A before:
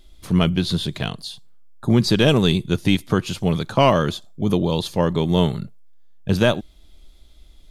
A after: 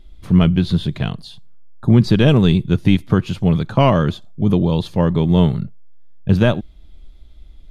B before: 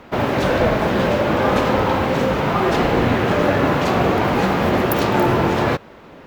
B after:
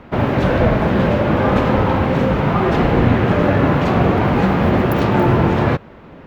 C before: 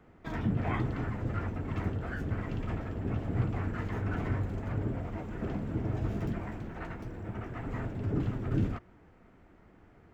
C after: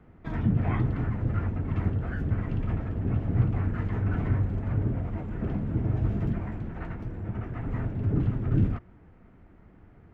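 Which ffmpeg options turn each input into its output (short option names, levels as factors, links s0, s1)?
-af "bass=f=250:g=7,treble=f=4000:g=-10"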